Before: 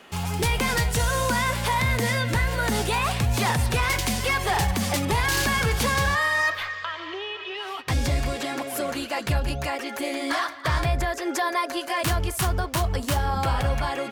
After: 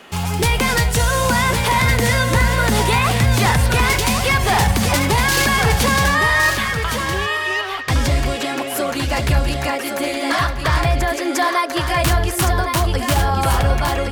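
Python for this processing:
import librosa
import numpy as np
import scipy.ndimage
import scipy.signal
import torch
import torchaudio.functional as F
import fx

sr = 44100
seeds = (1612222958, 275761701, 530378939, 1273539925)

y = x + 10.0 ** (-6.0 / 20.0) * np.pad(x, (int(1113 * sr / 1000.0), 0))[:len(x)]
y = y * 10.0 ** (6.5 / 20.0)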